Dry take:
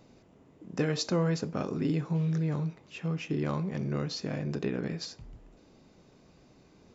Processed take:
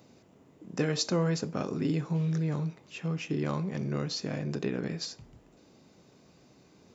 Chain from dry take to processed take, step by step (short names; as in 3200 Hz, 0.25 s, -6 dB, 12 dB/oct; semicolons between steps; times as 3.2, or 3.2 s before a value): HPF 82 Hz; high shelf 6700 Hz +8 dB